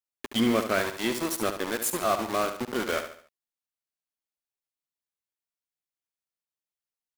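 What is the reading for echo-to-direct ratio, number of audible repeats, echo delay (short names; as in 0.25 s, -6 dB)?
-8.0 dB, 4, 71 ms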